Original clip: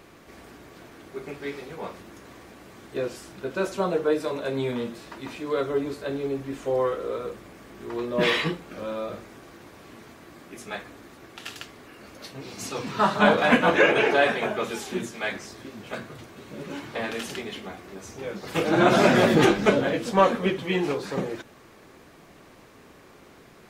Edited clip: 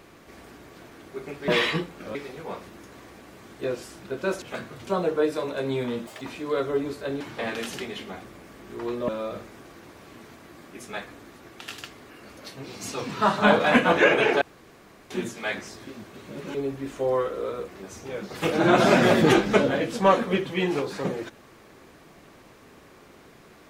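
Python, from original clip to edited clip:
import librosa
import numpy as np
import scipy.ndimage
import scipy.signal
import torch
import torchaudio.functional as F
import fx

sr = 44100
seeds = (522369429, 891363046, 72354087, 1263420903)

y = fx.edit(x, sr, fx.speed_span(start_s=4.95, length_s=0.27, speed=1.87),
    fx.swap(start_s=6.21, length_s=1.14, other_s=16.77, other_length_s=1.04),
    fx.move(start_s=8.19, length_s=0.67, to_s=1.48),
    fx.room_tone_fill(start_s=14.19, length_s=0.69),
    fx.move(start_s=15.81, length_s=0.45, to_s=3.75), tone=tone)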